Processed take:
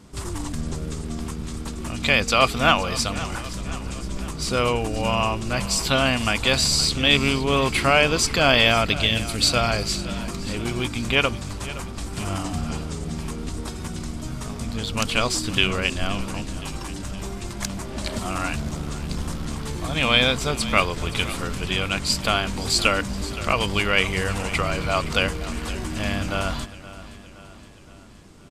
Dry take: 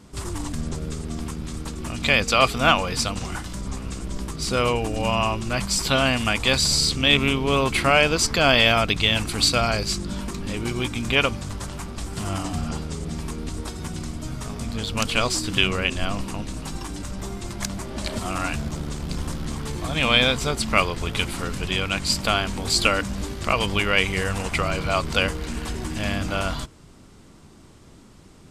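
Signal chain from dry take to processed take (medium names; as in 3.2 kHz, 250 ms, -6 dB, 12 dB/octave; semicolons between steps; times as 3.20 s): 8.95–9.44 s: peaking EQ 1 kHz -15 dB 0.93 oct; feedback delay 519 ms, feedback 55%, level -16 dB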